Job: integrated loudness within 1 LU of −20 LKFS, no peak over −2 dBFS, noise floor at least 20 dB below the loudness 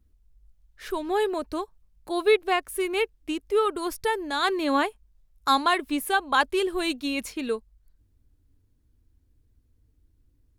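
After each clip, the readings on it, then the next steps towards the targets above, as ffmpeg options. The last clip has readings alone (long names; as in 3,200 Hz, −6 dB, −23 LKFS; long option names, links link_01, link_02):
integrated loudness −26.0 LKFS; sample peak −8.5 dBFS; target loudness −20.0 LKFS
→ -af "volume=6dB"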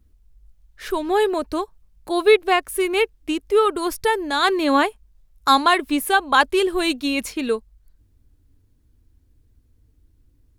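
integrated loudness −20.0 LKFS; sample peak −2.5 dBFS; background noise floor −60 dBFS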